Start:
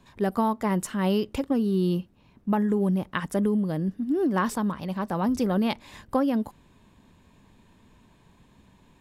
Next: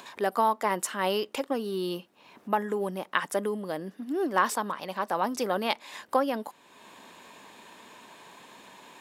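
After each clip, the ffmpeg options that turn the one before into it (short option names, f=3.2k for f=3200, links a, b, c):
-filter_complex "[0:a]highpass=520,asplit=2[a][b];[b]acompressor=mode=upward:threshold=-34dB:ratio=2.5,volume=-1dB[c];[a][c]amix=inputs=2:normalize=0,volume=-2dB"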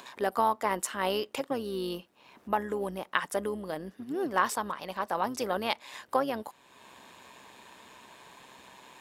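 -af "asubboost=boost=3:cutoff=110,tremolo=f=130:d=0.4"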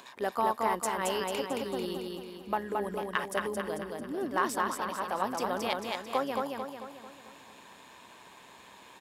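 -filter_complex "[0:a]asplit=2[a][b];[b]asoftclip=type=hard:threshold=-16.5dB,volume=-8.5dB[c];[a][c]amix=inputs=2:normalize=0,aecho=1:1:222|444|666|888|1110|1332|1554:0.708|0.354|0.177|0.0885|0.0442|0.0221|0.0111,volume=-5.5dB"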